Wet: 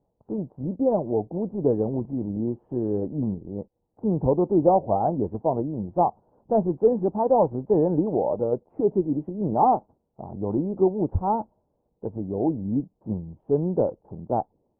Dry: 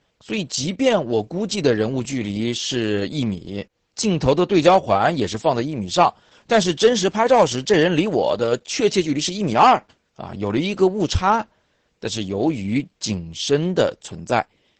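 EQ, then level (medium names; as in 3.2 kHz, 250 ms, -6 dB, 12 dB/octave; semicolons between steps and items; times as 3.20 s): elliptic low-pass 890 Hz, stop band 80 dB; distance through air 350 m; -3.0 dB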